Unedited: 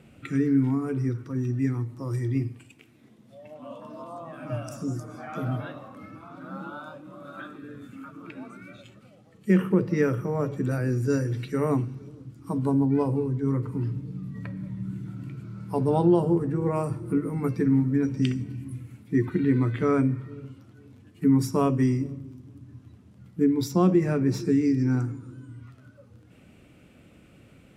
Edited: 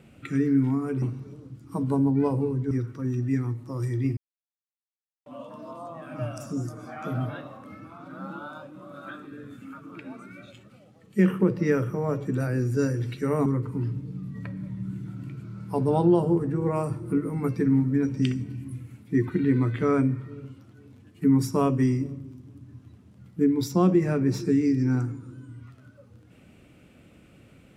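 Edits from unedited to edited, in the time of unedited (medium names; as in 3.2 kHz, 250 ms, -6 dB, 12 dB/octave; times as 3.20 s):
2.48–3.57 s: mute
11.77–13.46 s: move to 1.02 s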